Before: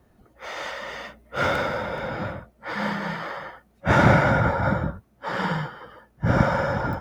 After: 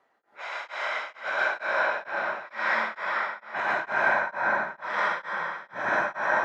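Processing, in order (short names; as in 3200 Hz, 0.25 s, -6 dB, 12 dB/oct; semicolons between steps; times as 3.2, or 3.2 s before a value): HPF 840 Hz 12 dB/oct; high shelf 2200 Hz -10 dB; limiter -24.5 dBFS, peak gain reduction 10.5 dB; air absorption 83 m; on a send: diffused feedback echo 0.485 s, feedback 61%, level -13.5 dB; on the sum: plate-style reverb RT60 1.1 s, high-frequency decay 0.8×, pre-delay 0.11 s, DRR -6 dB; speed mistake 44.1 kHz file played as 48 kHz; beating tremolo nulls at 2.2 Hz; gain +4 dB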